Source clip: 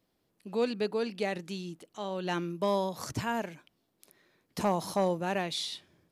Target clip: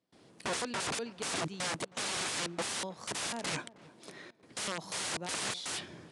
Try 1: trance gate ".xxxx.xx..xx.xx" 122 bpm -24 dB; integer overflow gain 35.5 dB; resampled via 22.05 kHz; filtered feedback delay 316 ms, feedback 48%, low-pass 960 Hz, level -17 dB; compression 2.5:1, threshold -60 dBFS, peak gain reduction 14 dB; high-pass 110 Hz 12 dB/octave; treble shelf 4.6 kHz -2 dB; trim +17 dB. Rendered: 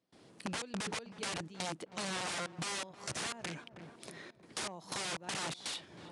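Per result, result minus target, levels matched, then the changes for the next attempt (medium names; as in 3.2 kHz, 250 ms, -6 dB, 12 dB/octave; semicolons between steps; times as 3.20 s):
compression: peak gain reduction +14 dB; integer overflow: distortion -14 dB
remove: compression 2.5:1, threshold -60 dBFS, peak gain reduction 14 dB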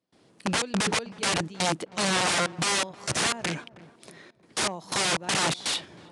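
integer overflow: distortion -14 dB
change: integer overflow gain 45 dB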